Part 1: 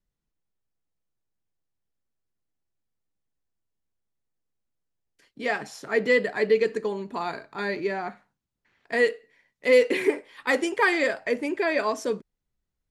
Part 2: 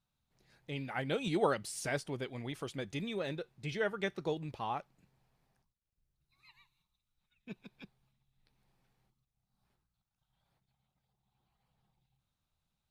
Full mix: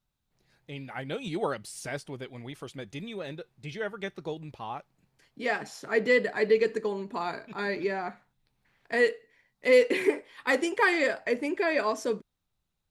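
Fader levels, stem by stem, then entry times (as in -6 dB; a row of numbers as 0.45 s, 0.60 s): -2.0 dB, 0.0 dB; 0.00 s, 0.00 s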